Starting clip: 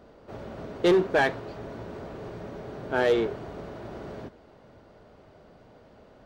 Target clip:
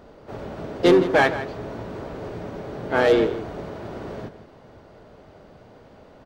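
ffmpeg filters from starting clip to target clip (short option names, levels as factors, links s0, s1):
-filter_complex "[0:a]asplit=3[s0][s1][s2];[s1]asetrate=33038,aresample=44100,atempo=1.33484,volume=0.316[s3];[s2]asetrate=58866,aresample=44100,atempo=0.749154,volume=0.224[s4];[s0][s3][s4]amix=inputs=3:normalize=0,asplit=2[s5][s6];[s6]adelay=163.3,volume=0.224,highshelf=f=4000:g=-3.67[s7];[s5][s7]amix=inputs=2:normalize=0,volume=1.68"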